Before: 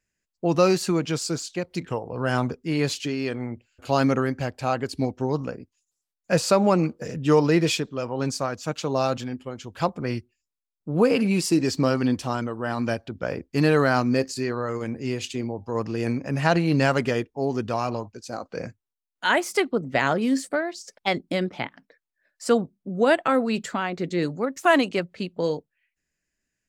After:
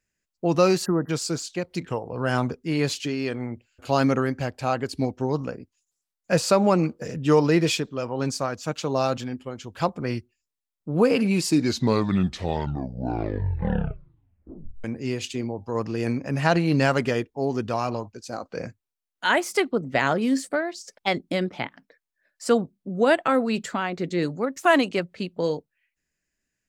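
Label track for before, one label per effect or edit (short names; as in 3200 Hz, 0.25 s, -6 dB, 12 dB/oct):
0.850000	1.100000	spectral delete 2000–11000 Hz
11.340000	11.340000	tape stop 3.50 s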